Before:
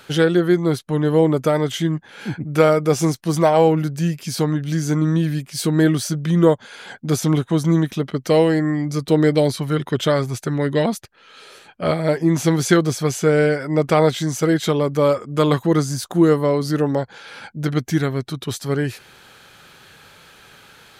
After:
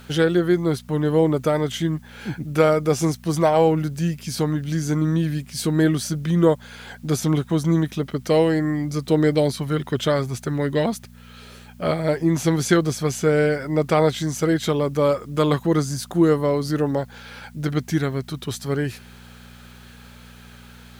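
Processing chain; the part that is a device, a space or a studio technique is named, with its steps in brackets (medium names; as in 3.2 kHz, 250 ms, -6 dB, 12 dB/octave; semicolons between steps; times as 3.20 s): video cassette with head-switching buzz (mains buzz 60 Hz, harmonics 4, -43 dBFS -2 dB/octave; white noise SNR 39 dB); trim -2.5 dB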